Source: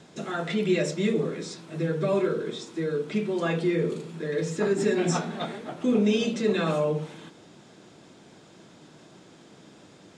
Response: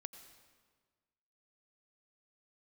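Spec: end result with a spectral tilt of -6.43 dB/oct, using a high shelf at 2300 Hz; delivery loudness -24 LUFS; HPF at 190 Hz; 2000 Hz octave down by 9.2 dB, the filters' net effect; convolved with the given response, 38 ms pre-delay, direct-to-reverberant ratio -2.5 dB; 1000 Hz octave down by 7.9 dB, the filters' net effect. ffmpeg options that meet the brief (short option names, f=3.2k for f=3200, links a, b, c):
-filter_complex "[0:a]highpass=190,equalizer=f=1k:t=o:g=-8.5,equalizer=f=2k:t=o:g=-5.5,highshelf=f=2.3k:g=-7,asplit=2[a][b];[1:a]atrim=start_sample=2205,adelay=38[c];[b][c]afir=irnorm=-1:irlink=0,volume=7dB[d];[a][d]amix=inputs=2:normalize=0,volume=1.5dB"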